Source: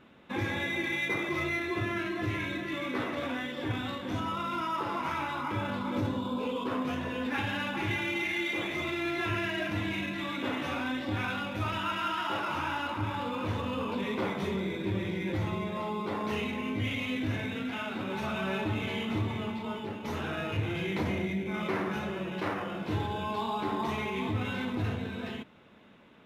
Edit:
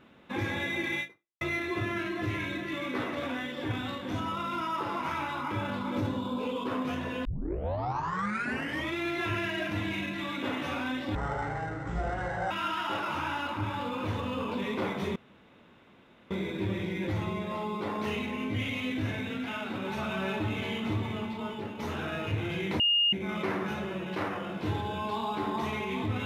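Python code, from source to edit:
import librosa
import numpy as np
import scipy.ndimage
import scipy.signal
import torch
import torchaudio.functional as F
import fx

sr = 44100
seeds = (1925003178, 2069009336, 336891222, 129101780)

y = fx.edit(x, sr, fx.fade_out_span(start_s=1.01, length_s=0.4, curve='exp'),
    fx.tape_start(start_s=7.25, length_s=1.72),
    fx.speed_span(start_s=11.15, length_s=0.76, speed=0.56),
    fx.insert_room_tone(at_s=14.56, length_s=1.15),
    fx.bleep(start_s=21.05, length_s=0.33, hz=2840.0, db=-21.5), tone=tone)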